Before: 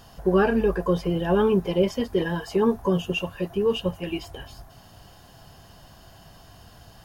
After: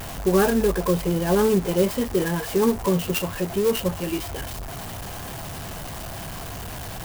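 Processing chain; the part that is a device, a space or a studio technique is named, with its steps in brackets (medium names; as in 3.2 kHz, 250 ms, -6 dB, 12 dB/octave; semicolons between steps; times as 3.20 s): early CD player with a faulty converter (jump at every zero crossing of -29 dBFS; sampling jitter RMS 0.055 ms)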